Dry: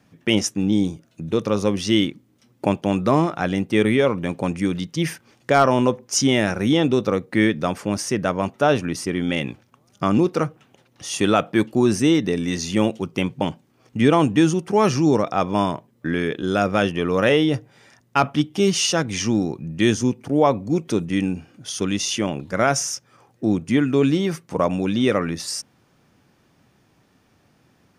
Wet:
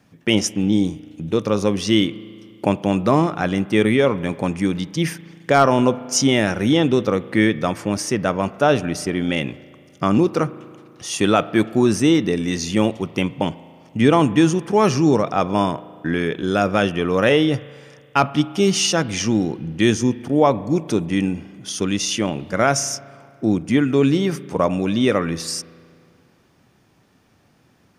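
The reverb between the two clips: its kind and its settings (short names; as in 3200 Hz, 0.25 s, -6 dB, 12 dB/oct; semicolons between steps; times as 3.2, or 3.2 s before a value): spring tank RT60 2.2 s, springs 36 ms, chirp 40 ms, DRR 17.5 dB; gain +1.5 dB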